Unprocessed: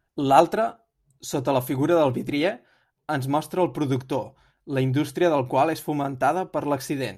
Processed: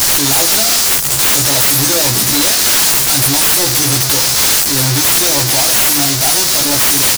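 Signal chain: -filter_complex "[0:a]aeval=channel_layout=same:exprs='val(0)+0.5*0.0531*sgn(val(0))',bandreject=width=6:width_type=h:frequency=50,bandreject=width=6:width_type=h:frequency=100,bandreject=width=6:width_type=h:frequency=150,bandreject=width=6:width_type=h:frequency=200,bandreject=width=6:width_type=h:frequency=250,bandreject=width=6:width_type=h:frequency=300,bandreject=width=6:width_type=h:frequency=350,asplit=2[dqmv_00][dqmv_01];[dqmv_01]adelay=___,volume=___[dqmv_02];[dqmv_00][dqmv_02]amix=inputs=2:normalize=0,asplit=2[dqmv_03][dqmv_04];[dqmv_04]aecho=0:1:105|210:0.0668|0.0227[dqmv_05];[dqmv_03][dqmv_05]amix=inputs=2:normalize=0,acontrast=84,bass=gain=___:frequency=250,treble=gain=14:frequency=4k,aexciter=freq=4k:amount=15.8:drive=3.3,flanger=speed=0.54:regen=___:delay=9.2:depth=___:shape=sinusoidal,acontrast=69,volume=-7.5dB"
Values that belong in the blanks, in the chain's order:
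14, -3dB, 6, -52, 1.2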